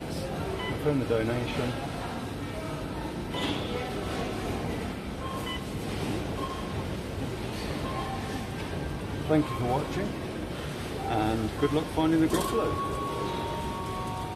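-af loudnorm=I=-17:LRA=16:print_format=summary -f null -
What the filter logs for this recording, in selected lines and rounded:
Input Integrated:    -30.6 LUFS
Input True Peak:     -12.2 dBTP
Input LRA:             4.8 LU
Input Threshold:     -40.6 LUFS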